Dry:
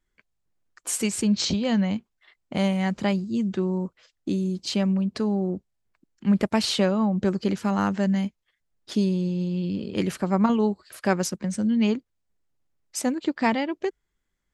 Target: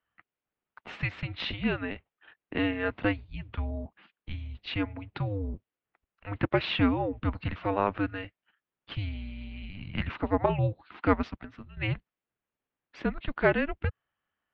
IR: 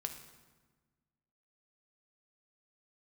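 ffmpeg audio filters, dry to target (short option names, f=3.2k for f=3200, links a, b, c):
-filter_complex "[0:a]asettb=1/sr,asplit=3[a][b][c];[a]atrim=end=11.344[d];[b]atrim=start=11.34:end=11.77,asetpts=PTS-STARTPTS,afade=t=in:d=0.004:c=qsin,afade=t=out:st=0.426:d=0.004:c=qsin,acompressor=threshold=-31dB:ratio=6[e];[c]atrim=start=11.766[f];[d][e]acrossfade=d=0.004:c1=hsin:c2=qsin[g];[g][f]acrossfade=d=0.004:c1=qsin:c2=hsin,highpass=f=410:t=q:w=0.5412,highpass=f=410:t=q:w=1.307,lowpass=f=3.4k:t=q:w=0.5176,lowpass=f=3.4k:t=q:w=0.7071,lowpass=f=3.4k:t=q:w=1.932,afreqshift=-300,volume=1.5dB"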